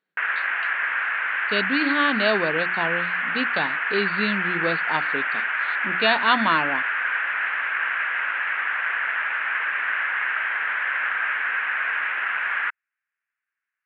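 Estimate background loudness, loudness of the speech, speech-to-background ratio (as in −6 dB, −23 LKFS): −23.5 LKFS, −25.0 LKFS, −1.5 dB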